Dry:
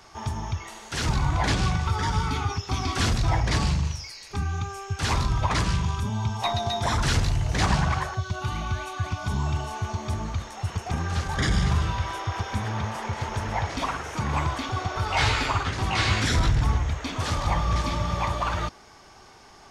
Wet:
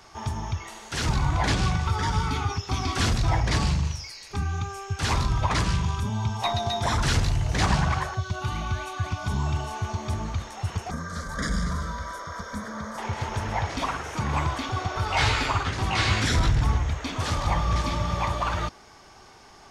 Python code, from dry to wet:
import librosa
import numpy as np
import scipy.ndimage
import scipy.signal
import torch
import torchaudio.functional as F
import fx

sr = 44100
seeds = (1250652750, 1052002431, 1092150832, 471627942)

y = fx.fixed_phaser(x, sr, hz=540.0, stages=8, at=(10.9, 12.98))